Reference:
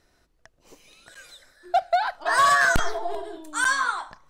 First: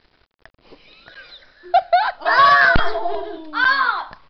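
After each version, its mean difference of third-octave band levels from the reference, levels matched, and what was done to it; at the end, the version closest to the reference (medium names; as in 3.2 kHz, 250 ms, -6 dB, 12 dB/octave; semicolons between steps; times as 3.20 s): 3.0 dB: word length cut 10-bit, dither none; resampled via 11.025 kHz; trim +6.5 dB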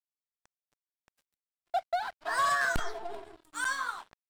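5.0 dB: crossover distortion -39 dBFS; band-stop 6.3 kHz, Q 19; trim -8.5 dB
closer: first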